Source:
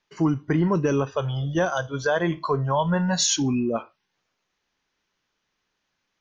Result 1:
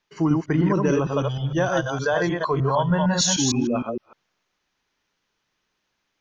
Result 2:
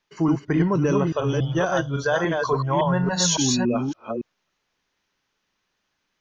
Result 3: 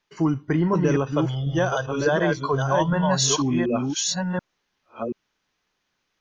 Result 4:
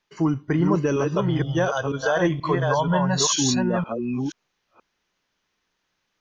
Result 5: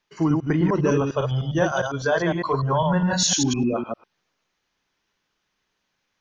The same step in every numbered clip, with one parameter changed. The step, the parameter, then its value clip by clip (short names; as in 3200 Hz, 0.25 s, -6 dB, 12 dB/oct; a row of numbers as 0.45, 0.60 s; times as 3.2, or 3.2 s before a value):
reverse delay, time: 0.153, 0.281, 0.732, 0.48, 0.101 s